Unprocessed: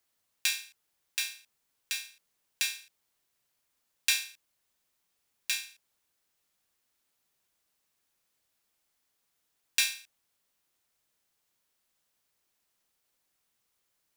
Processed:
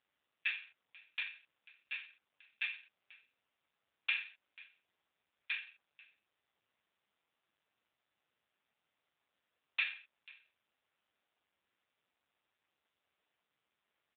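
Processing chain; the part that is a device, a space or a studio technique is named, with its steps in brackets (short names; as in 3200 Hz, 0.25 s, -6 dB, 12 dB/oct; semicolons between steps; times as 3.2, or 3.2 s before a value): 0.54–1.19 HPF 160 Hz 12 dB/oct; satellite phone (BPF 380–3300 Hz; echo 0.494 s -22.5 dB; gain +1.5 dB; AMR-NB 5.9 kbps 8000 Hz)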